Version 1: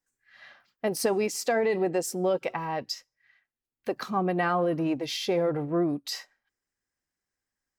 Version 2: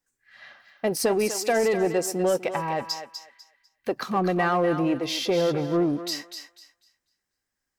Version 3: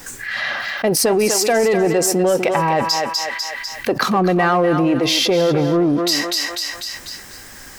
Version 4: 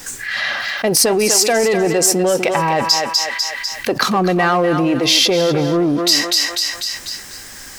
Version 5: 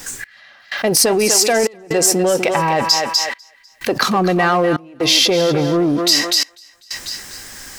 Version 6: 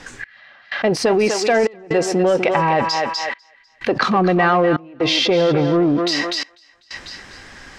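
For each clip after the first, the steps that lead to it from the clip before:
in parallel at −6 dB: hard clipping −24.5 dBFS, distortion −12 dB; on the sum: feedback echo with a high-pass in the loop 248 ms, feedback 25%, high-pass 620 Hz, level −8 dB
envelope flattener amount 70%; level +5 dB
high-shelf EQ 3,600 Hz +11.5 dB; bit-depth reduction 8 bits, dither none; high-shelf EQ 9,000 Hz −10.5 dB
gate pattern "x..xxxx.xxxxx" 63 BPM −24 dB
low-pass filter 3,100 Hz 12 dB per octave

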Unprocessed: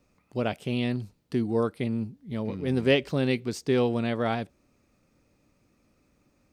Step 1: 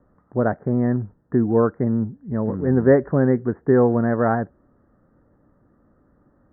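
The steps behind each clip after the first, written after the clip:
Butterworth low-pass 1,800 Hz 96 dB per octave
level +8 dB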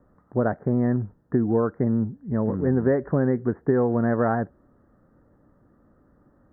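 downward compressor, threshold −17 dBFS, peak gain reduction 8 dB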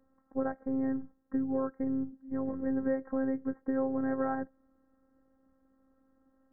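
phases set to zero 266 Hz
level −7.5 dB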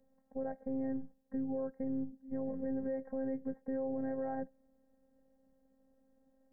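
phaser with its sweep stopped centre 330 Hz, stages 6
brickwall limiter −31 dBFS, peak gain reduction 8 dB
level +1 dB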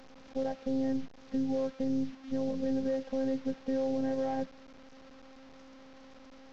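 linear delta modulator 32 kbit/s, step −52 dBFS
level +5.5 dB

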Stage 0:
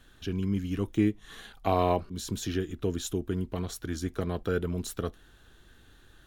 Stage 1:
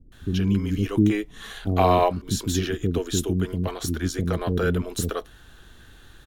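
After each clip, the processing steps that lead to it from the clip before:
multiband delay without the direct sound lows, highs 120 ms, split 370 Hz
level +8 dB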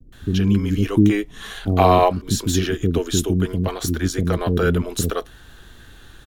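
pitch vibrato 0.58 Hz 26 cents
level +4.5 dB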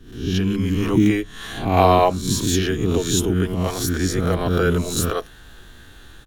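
peak hold with a rise ahead of every peak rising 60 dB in 0.54 s
mains-hum notches 50/100/150/200 Hz
level −1 dB

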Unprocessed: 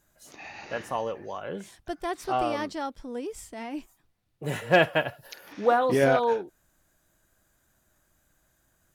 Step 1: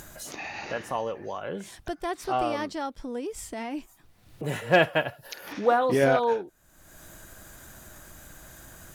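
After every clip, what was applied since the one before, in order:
upward compression, threshold −29 dBFS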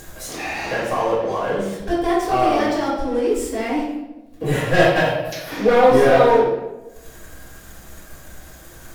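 leveller curve on the samples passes 3
convolution reverb RT60 1.1 s, pre-delay 4 ms, DRR −8.5 dB
level −10.5 dB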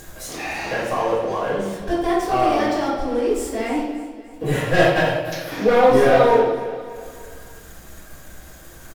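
repeating echo 294 ms, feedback 48%, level −15 dB
level −1 dB

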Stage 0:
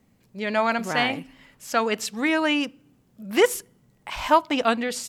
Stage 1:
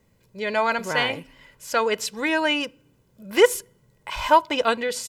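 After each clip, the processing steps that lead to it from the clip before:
comb filter 2 ms, depth 53%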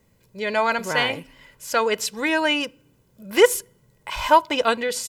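high-shelf EQ 7,700 Hz +4 dB
level +1 dB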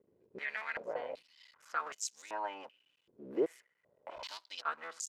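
sub-harmonics by changed cycles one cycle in 3, muted
downward compressor 2 to 1, threshold −39 dBFS, peak gain reduction 16 dB
band-pass on a step sequencer 2.6 Hz 380–6,600 Hz
level +4 dB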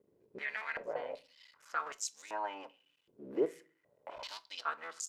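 rectangular room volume 220 cubic metres, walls furnished, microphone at 0.3 metres

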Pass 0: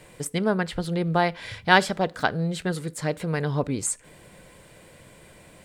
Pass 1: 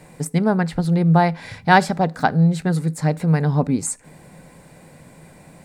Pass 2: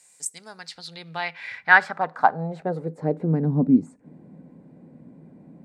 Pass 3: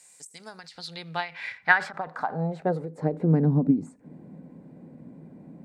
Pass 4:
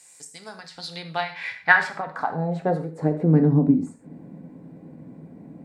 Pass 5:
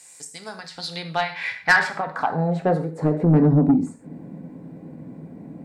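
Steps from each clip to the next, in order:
thirty-one-band graphic EQ 160 Hz +11 dB, 250 Hz +9 dB, 800 Hz +8 dB, 3,150 Hz −9 dB; level +1.5 dB
band-pass filter sweep 7,300 Hz → 250 Hz, 0:00.35–0:03.52; level +5 dB
every ending faded ahead of time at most 180 dB per second; level +1.5 dB
reverb whose tail is shaped and stops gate 160 ms falling, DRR 5 dB; level +2.5 dB
soft clipping −13.5 dBFS, distortion −13 dB; level +4 dB

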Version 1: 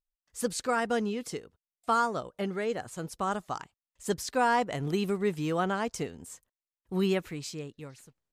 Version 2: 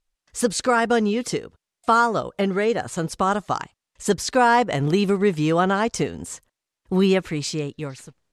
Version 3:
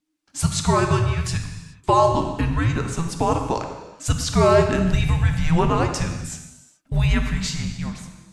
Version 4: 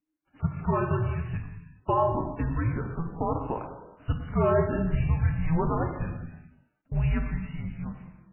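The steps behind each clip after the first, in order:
in parallel at +1.5 dB: downward compressor, threshold −35 dBFS, peak gain reduction 13.5 dB; on the sum: Bessel low-pass filter 8,500 Hz, order 8; level +6.5 dB
reverb whose tail is shaped and stops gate 450 ms falling, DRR 4 dB; frequency shifter −330 Hz
high-frequency loss of the air 480 metres; level −6 dB; MP3 8 kbit/s 8,000 Hz

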